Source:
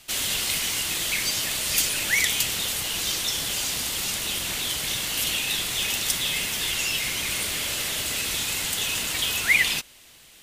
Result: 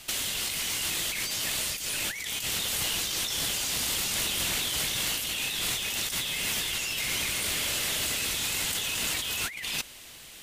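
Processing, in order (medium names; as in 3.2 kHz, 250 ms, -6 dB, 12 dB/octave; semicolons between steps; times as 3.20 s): compressor with a negative ratio -31 dBFS, ratio -1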